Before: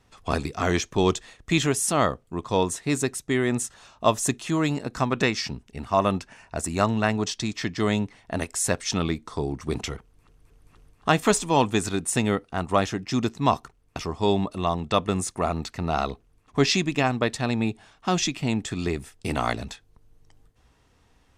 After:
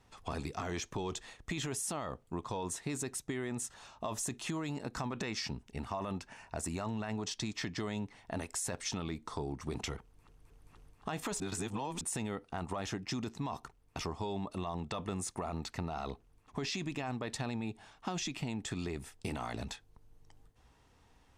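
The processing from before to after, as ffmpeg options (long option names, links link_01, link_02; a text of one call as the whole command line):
ffmpeg -i in.wav -filter_complex "[0:a]asplit=3[link_01][link_02][link_03];[link_01]atrim=end=11.402[link_04];[link_02]atrim=start=11.398:end=12.012,asetpts=PTS-STARTPTS,areverse[link_05];[link_03]atrim=start=12.008[link_06];[link_04][link_05]acrossfade=duration=0.004:curve1=hsin:curve2=hsin[link_07];[link_07][link_06]acrossfade=duration=0.004:curve1=hsin:curve2=hsin,equalizer=frequency=870:width=4.2:gain=4.5,alimiter=limit=-19dB:level=0:latency=1:release=18,acompressor=threshold=-30dB:ratio=6,volume=-4dB" out.wav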